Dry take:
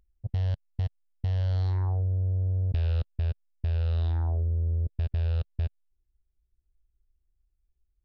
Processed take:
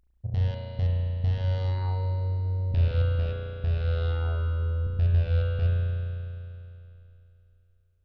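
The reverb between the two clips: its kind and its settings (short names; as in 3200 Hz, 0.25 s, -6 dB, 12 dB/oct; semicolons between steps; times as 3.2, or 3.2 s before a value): spring tank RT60 2.9 s, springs 34 ms, chirp 20 ms, DRR -4.5 dB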